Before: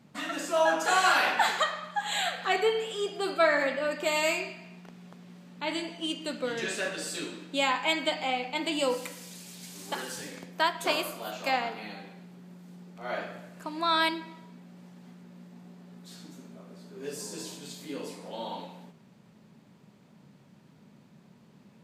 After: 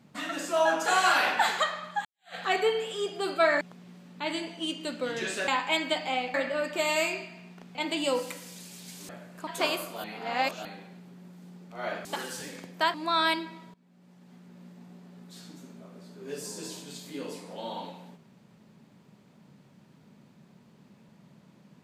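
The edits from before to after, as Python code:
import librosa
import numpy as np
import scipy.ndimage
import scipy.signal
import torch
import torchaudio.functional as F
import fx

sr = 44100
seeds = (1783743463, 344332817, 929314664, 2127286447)

y = fx.edit(x, sr, fx.fade_in_span(start_s=2.05, length_s=0.3, curve='exp'),
    fx.move(start_s=3.61, length_s=1.41, to_s=8.5),
    fx.cut(start_s=6.89, length_s=0.75),
    fx.swap(start_s=9.84, length_s=0.89, other_s=13.31, other_length_s=0.38),
    fx.reverse_span(start_s=11.3, length_s=0.61),
    fx.fade_in_from(start_s=14.49, length_s=0.86, floor_db=-20.5), tone=tone)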